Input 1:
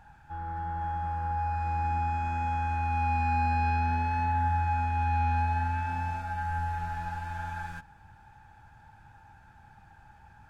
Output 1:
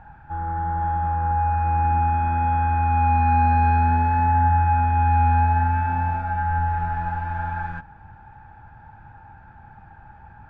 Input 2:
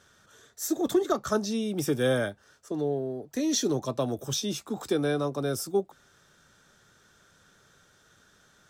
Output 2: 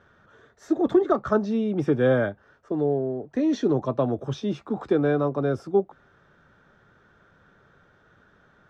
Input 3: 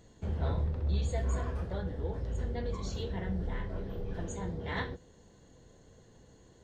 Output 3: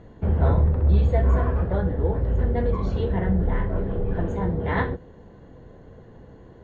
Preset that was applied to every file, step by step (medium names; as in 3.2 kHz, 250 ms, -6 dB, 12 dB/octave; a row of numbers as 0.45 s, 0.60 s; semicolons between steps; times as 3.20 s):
low-pass 1.7 kHz 12 dB/octave; peak normalisation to -9 dBFS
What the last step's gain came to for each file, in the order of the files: +9.5 dB, +5.0 dB, +12.5 dB